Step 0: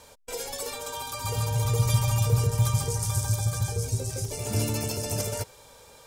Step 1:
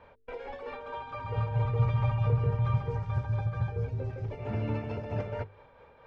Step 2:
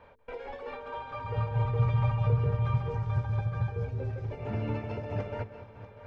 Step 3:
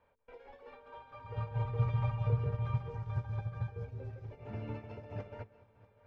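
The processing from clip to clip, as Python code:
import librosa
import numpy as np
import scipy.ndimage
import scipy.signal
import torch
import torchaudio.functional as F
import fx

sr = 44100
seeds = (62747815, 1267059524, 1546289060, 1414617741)

y1 = scipy.signal.sosfilt(scipy.signal.butter(4, 2300.0, 'lowpass', fs=sr, output='sos'), x)
y1 = fx.hum_notches(y1, sr, base_hz=50, count=9)
y1 = fx.tremolo_shape(y1, sr, shape='triangle', hz=4.5, depth_pct=50)
y2 = fx.echo_multitap(y1, sr, ms=(188, 426, 641), db=(-15.0, -19.5, -15.0))
y3 = fx.upward_expand(y2, sr, threshold_db=-45.0, expansion=1.5)
y3 = y3 * librosa.db_to_amplitude(-4.0)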